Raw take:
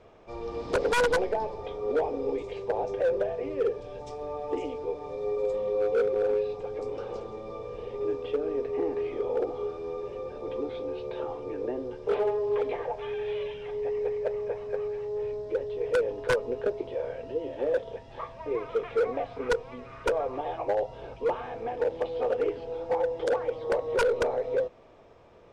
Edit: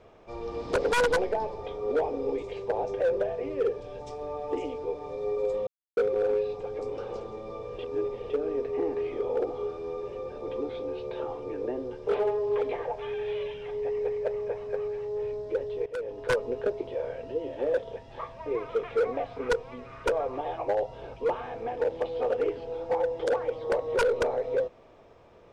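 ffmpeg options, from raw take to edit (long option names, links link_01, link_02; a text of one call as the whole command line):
ffmpeg -i in.wav -filter_complex "[0:a]asplit=6[link_01][link_02][link_03][link_04][link_05][link_06];[link_01]atrim=end=5.67,asetpts=PTS-STARTPTS,afade=type=out:start_time=5.666:duration=0.004:curve=hsin[link_07];[link_02]atrim=start=5.67:end=5.97,asetpts=PTS-STARTPTS,volume=0[link_08];[link_03]atrim=start=5.97:end=7.792,asetpts=PTS-STARTPTS,afade=type=in:duration=0.004:curve=hsin[link_09];[link_04]atrim=start=7.788:end=8.302,asetpts=PTS-STARTPTS,areverse[link_10];[link_05]atrim=start=8.298:end=15.86,asetpts=PTS-STARTPTS,afade=type=out:start_time=7.558:duration=0.004:curve=hsin:silence=0.16788[link_11];[link_06]atrim=start=15.86,asetpts=PTS-STARTPTS,afade=type=in:duration=0.51:silence=0.16788[link_12];[link_07][link_08][link_09]concat=n=3:v=0:a=1[link_13];[link_13][link_10]acrossfade=duration=0.004:curve1=hsin:curve2=hsin[link_14];[link_11][link_12]concat=n=2:v=0:a=1[link_15];[link_14][link_15]acrossfade=duration=0.004:curve1=hsin:curve2=hsin" out.wav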